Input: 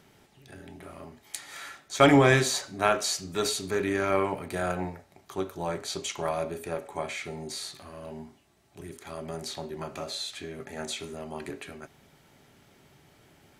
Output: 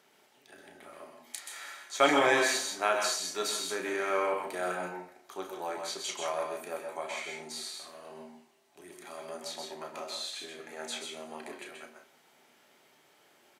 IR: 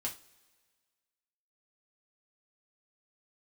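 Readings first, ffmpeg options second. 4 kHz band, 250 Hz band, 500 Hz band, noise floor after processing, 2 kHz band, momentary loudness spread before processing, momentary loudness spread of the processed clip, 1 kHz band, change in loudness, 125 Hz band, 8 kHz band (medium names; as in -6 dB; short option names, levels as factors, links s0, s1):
-1.5 dB, -9.5 dB, -4.5 dB, -64 dBFS, -1.5 dB, 21 LU, 22 LU, -2.0 dB, -4.0 dB, -22.0 dB, -1.5 dB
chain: -filter_complex "[0:a]highpass=400,asplit=2[s0][s1];[s1]adelay=33,volume=0.422[s2];[s0][s2]amix=inputs=2:normalize=0,asplit=2[s3][s4];[1:a]atrim=start_sample=2205,adelay=127[s5];[s4][s5]afir=irnorm=-1:irlink=0,volume=0.631[s6];[s3][s6]amix=inputs=2:normalize=0,volume=0.631"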